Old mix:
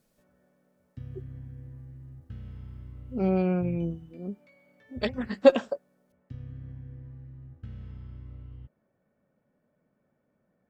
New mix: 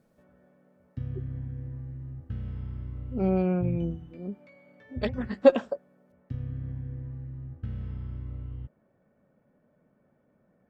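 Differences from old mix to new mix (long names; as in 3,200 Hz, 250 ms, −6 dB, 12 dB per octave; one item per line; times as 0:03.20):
background +6.5 dB
master: add high-shelf EQ 2,800 Hz −8 dB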